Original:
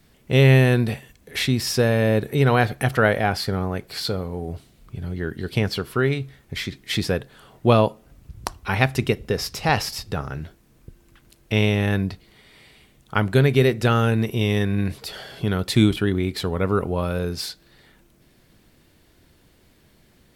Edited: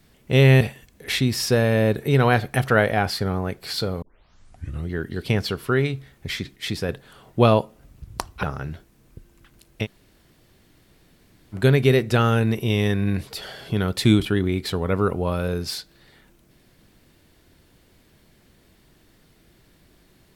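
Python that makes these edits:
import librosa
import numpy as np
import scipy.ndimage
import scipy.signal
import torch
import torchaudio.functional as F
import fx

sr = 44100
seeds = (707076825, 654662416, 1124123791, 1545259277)

y = fx.edit(x, sr, fx.cut(start_s=0.61, length_s=0.27),
    fx.tape_start(start_s=4.29, length_s=0.88),
    fx.clip_gain(start_s=6.83, length_s=0.33, db=-4.0),
    fx.cut(start_s=8.7, length_s=1.44),
    fx.room_tone_fill(start_s=11.55, length_s=1.71, crossfade_s=0.06), tone=tone)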